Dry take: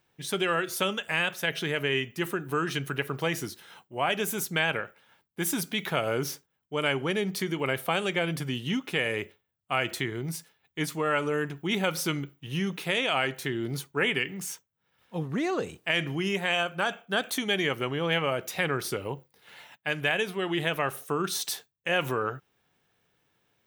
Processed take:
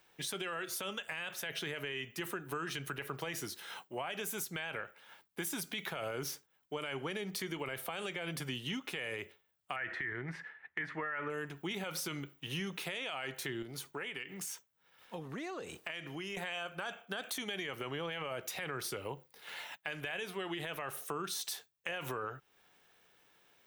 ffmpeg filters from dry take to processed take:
-filter_complex "[0:a]asettb=1/sr,asplit=3[a][b][c];[a]atrim=end=9.764[d];[b]atrim=start=9.76:end=11.3,asetpts=PTS-STARTPTS,afade=t=in:d=0.004:c=qsin,afade=t=out:st=1.536:d=0.004:c=qsin,lowpass=f=1.8k:t=q:w=6.4[e];[c]atrim=start=11.296[f];[d][e]acrossfade=d=0.004:c1=hsin:c2=qsin[g];[g][f]acrossfade=d=0.004:c1=qsin:c2=hsin,asettb=1/sr,asplit=3[h][i][j];[h]atrim=end=13.624[k];[i]atrim=start=13.62:end=16.37,asetpts=PTS-STARTPTS,afade=t=in:d=0.004:c=qsin,afade=t=out:st=2.746:d=0.004:c=qsin,acompressor=threshold=-40dB:ratio=2.5:attack=3.2:release=140:knee=1:detection=peak[l];[j]atrim=start=16.366[m];[k][l]acrossfade=d=0.004:c1=hsin:c2=qsin[n];[n][m]acrossfade=d=0.004:c1=qsin:c2=hsin,equalizer=f=93:w=0.41:g=-12.5,alimiter=limit=-22.5dB:level=0:latency=1:release=23,acrossover=split=120[o][p];[p]acompressor=threshold=-46dB:ratio=3[q];[o][q]amix=inputs=2:normalize=0,volume=5.5dB"

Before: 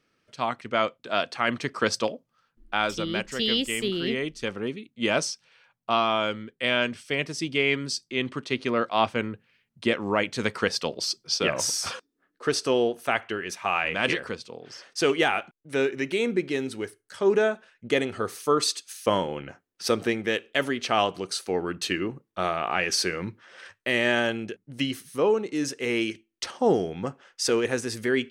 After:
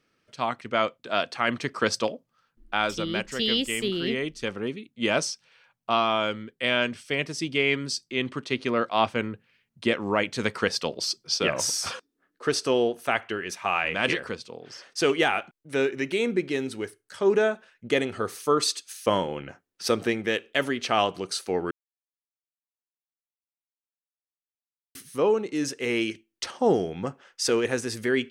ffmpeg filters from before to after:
-filter_complex "[0:a]asplit=3[a][b][c];[a]atrim=end=21.71,asetpts=PTS-STARTPTS,afade=t=out:st=21.706:d=0.004:c=hsin[d];[b]atrim=start=21.71:end=24.95,asetpts=PTS-STARTPTS,volume=0[e];[c]atrim=start=24.95,asetpts=PTS-STARTPTS,afade=t=in:d=0.004:c=hsin[f];[d][e][f]concat=n=3:v=0:a=1"

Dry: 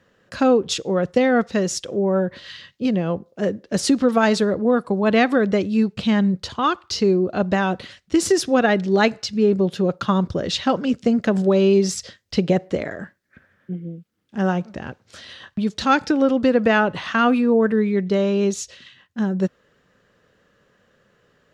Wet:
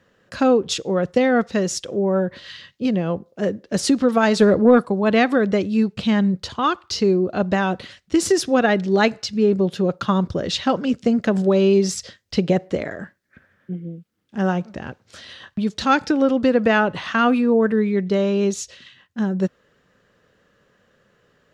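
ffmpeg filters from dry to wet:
-filter_complex "[0:a]asplit=3[a][b][c];[a]afade=t=out:st=4.39:d=0.02[d];[b]acontrast=58,afade=t=in:st=4.39:d=0.02,afade=t=out:st=4.84:d=0.02[e];[c]afade=t=in:st=4.84:d=0.02[f];[d][e][f]amix=inputs=3:normalize=0"

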